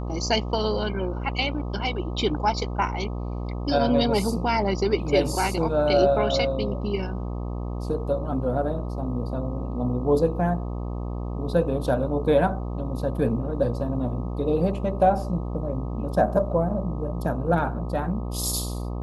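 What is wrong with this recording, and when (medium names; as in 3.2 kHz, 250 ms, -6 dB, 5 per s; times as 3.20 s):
buzz 60 Hz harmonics 21 -30 dBFS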